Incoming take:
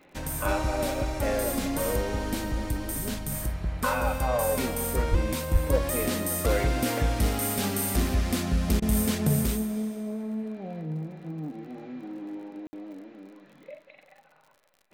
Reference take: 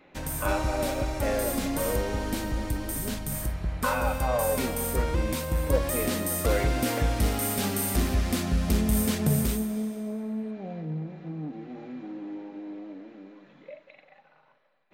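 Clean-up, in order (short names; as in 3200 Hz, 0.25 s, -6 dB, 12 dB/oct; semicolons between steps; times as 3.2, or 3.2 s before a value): de-click; de-plosive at 5.1/5.52; room tone fill 12.67–12.73; interpolate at 8.8, 20 ms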